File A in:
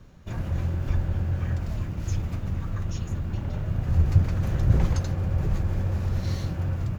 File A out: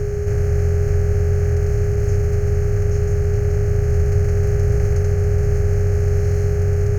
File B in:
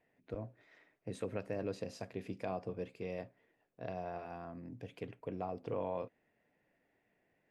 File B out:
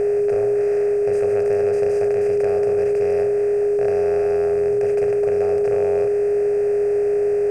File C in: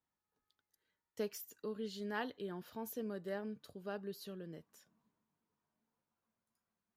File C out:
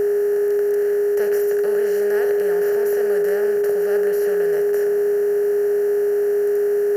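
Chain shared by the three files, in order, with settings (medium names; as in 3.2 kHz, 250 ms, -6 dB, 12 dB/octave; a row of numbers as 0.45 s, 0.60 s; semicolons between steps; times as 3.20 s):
spectral levelling over time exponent 0.2; static phaser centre 1 kHz, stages 6; whistle 410 Hz -23 dBFS; normalise loudness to -19 LUFS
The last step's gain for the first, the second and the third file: -1.0 dB, +7.5 dB, +7.5 dB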